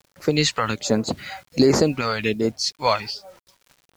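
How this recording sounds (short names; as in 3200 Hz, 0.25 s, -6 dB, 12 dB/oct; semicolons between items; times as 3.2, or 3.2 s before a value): phasing stages 2, 1.3 Hz, lowest notch 310–3000 Hz; a quantiser's noise floor 10-bit, dither none; noise-modulated level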